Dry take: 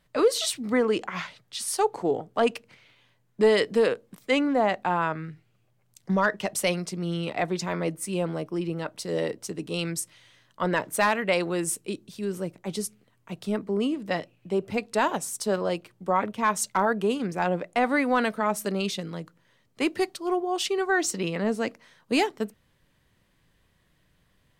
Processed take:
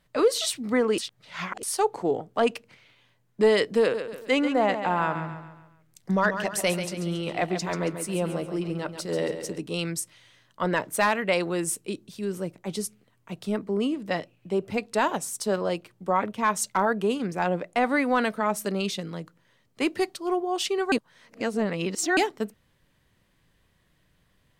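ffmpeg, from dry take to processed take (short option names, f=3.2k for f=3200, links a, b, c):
-filter_complex "[0:a]asettb=1/sr,asplit=3[a][b][c];[a]atrim=end=3.804[d];[b]atrim=start=3.8:end=9.58,asetpts=PTS-STARTPTS,afade=t=in:d=0.004:c=qsin,afade=t=out:st=5.776:d=0.004:c=qsin,aecho=1:1:138|276|414|552|690:0.355|0.156|0.0687|0.0302|0.0133,atrim=end_sample=254898[e];[c]atrim=start=9.576[f];[d][e]acrossfade=d=0.004:c1=hsin:c2=qsin[g];[g][f]acrossfade=d=0.004:c1=qsin:c2=hsin,asplit=5[h][i][j][k][l];[h]atrim=end=0.982[m];[i]atrim=start=0.978:end=1.632,asetpts=PTS-STARTPTS,areverse[n];[j]atrim=start=1.628:end=20.922[o];[k]atrim=start=20.918:end=22.172,asetpts=PTS-STARTPTS,areverse[p];[l]atrim=start=22.168[q];[m][n]acrossfade=d=0.004:c1=hsin:c2=hsin[r];[r][o]acrossfade=d=0.004:c1=hsin:c2=hsin[s];[s][p]acrossfade=d=0.004:c1=hsin:c2=hsin[t];[t][q]acrossfade=d=0.004:c1=hsin:c2=hsin"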